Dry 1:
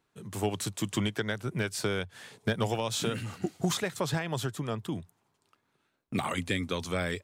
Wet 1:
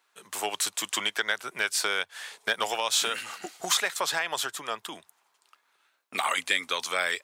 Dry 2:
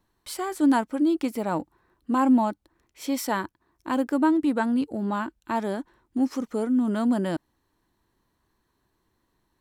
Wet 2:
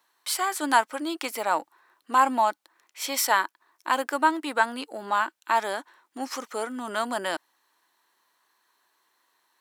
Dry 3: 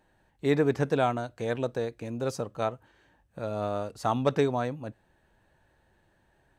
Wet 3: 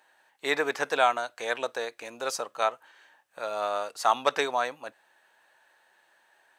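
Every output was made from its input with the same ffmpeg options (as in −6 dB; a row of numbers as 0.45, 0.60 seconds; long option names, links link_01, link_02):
-af "highpass=900,volume=8.5dB"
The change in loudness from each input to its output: +4.0, −1.0, +1.0 LU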